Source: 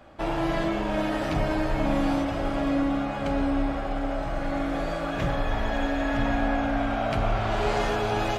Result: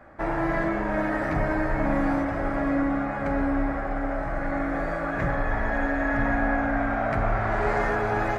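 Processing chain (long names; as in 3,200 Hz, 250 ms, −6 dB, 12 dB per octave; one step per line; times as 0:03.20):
high shelf with overshoot 2,400 Hz −8 dB, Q 3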